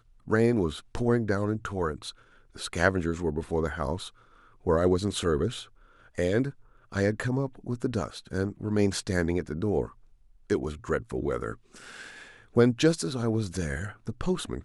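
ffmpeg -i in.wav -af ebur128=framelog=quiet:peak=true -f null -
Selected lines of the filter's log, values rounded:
Integrated loudness:
  I:         -28.7 LUFS
  Threshold: -39.4 LUFS
Loudness range:
  LRA:         2.6 LU
  Threshold: -49.7 LUFS
  LRA low:   -31.1 LUFS
  LRA high:  -28.5 LUFS
True peak:
  Peak:       -8.3 dBFS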